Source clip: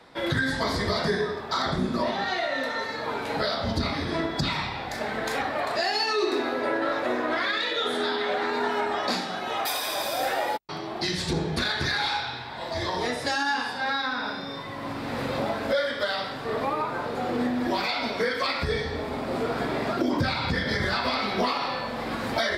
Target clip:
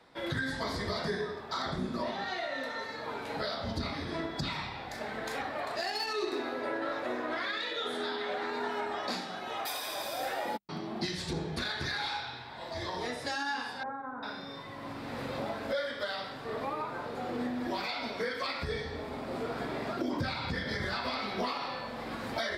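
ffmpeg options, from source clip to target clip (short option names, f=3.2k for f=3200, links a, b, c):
-filter_complex "[0:a]asettb=1/sr,asplit=3[a][b][c];[a]atrim=end=5.754[d];[b]atrim=start=5.75:end=6.33,asetpts=PTS-STARTPTS,afade=t=in:d=0.004:c=qsin,afade=t=out:st=0.576:d=0.004:c=qsin,aeval=exprs='0.211*(cos(1*acos(clip(val(0)/0.211,-1,1)))-cos(1*PI/2))+0.00944*(cos(7*acos(clip(val(0)/0.211,-1,1)))-cos(7*PI/2))':c=same[e];[c]atrim=start=6.326[f];[d][e]acrossfade=d=0.004:c1=hsin:c2=qsin[g];[g][f]acrossfade=d=0.004:c1=qsin:c2=hsin,asettb=1/sr,asplit=3[h][i][j];[h]atrim=end=10.454[k];[i]atrim=start=10.45:end=11.06,asetpts=PTS-STARTPTS,afade=t=in:d=0.004:c=qsin,afade=t=out:st=0.606:d=0.004:c=qsin,equalizer=f=210:t=o:w=0.82:g=14.5[l];[j]atrim=start=11.056[m];[k][l]acrossfade=d=0.004:c1=hsin:c2=qsin[n];[n][m]acrossfade=d=0.004:c1=qsin:c2=hsin,asettb=1/sr,asplit=3[o][p][q];[o]atrim=end=13.834[r];[p]atrim=start=13.83:end=14.23,asetpts=PTS-STARTPTS,afade=t=in:d=0.004:c=qsin,afade=t=out:st=0.396:d=0.004:c=qsin,lowpass=f=1.2k:w=0.5412,lowpass=f=1.2k:w=1.3066[s];[q]atrim=start=14.226[t];[r][s]acrossfade=d=0.004:c1=hsin:c2=qsin[u];[u][t]acrossfade=d=0.004:c1=qsin:c2=hsin,volume=-8dB"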